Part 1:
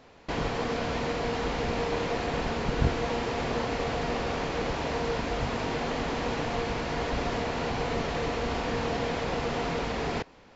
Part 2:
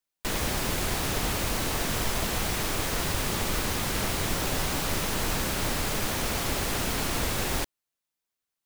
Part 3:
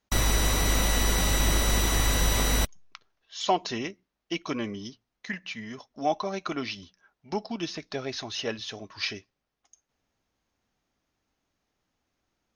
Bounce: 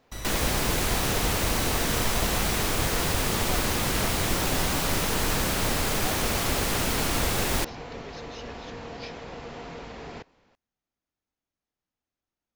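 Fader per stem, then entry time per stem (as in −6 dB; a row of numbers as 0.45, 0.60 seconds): −9.5, +2.5, −13.0 decibels; 0.00, 0.00, 0.00 seconds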